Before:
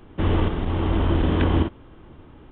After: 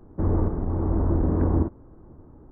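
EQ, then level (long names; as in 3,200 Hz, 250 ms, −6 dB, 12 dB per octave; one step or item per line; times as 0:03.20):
Gaussian smoothing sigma 7.7 samples
−1.5 dB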